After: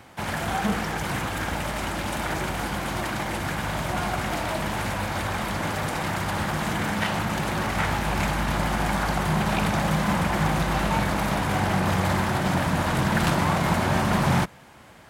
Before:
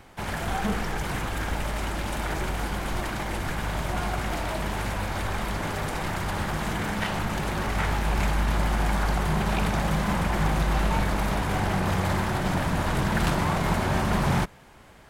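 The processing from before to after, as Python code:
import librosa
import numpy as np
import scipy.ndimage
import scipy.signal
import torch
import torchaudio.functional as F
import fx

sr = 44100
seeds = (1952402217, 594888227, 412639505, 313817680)

y = scipy.signal.sosfilt(scipy.signal.butter(2, 83.0, 'highpass', fs=sr, output='sos'), x)
y = fx.peak_eq(y, sr, hz=410.0, db=-5.5, octaves=0.2)
y = y * librosa.db_to_amplitude(3.0)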